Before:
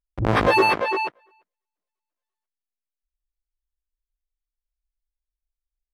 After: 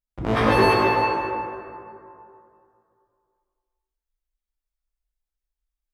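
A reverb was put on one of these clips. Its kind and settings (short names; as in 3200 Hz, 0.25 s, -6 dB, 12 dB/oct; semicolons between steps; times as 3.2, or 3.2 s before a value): plate-style reverb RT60 2.5 s, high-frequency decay 0.5×, DRR -6 dB; gain -5.5 dB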